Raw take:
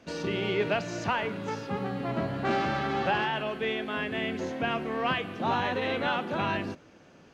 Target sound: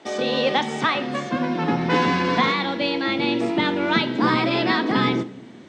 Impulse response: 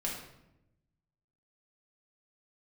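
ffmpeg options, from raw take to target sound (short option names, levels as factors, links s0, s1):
-filter_complex "[0:a]highpass=180,lowpass=4500,asetrate=56889,aresample=44100,asplit=2[s0][s1];[1:a]atrim=start_sample=2205,asetrate=61740,aresample=44100[s2];[s1][s2]afir=irnorm=-1:irlink=0,volume=0.316[s3];[s0][s3]amix=inputs=2:normalize=0,asubboost=boost=7:cutoff=240,volume=2.11"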